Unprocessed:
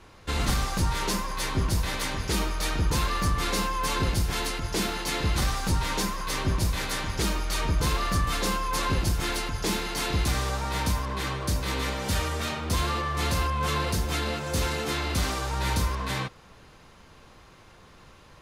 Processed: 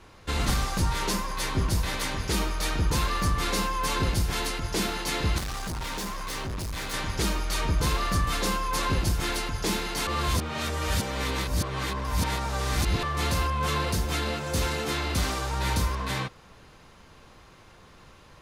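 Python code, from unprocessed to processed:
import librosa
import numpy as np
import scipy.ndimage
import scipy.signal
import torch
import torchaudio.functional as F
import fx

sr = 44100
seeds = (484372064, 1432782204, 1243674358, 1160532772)

y = fx.clip_hard(x, sr, threshold_db=-30.5, at=(5.38, 6.94))
y = fx.edit(y, sr, fx.reverse_span(start_s=10.07, length_s=2.96), tone=tone)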